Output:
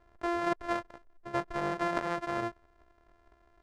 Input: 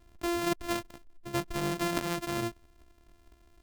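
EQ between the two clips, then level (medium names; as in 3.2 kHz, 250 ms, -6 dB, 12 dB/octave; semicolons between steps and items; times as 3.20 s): distance through air 78 m; high-order bell 890 Hz +10 dB 2.6 oct; -6.5 dB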